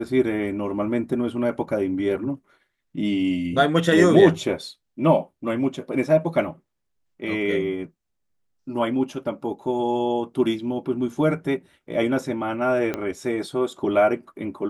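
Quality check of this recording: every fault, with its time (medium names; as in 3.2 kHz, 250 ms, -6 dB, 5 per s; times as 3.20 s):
12.94 s: pop -13 dBFS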